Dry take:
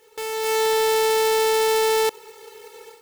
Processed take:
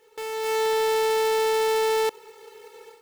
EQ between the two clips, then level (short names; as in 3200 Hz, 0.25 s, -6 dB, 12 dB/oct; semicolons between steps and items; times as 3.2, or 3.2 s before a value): bell 65 Hz -4.5 dB 1.7 oct; high shelf 4100 Hz -6 dB; -2.5 dB